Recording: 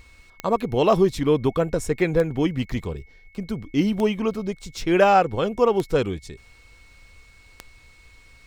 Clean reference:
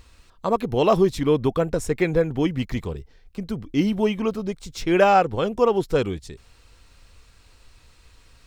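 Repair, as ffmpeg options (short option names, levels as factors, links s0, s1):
-af "adeclick=t=4,bandreject=f=2200:w=30"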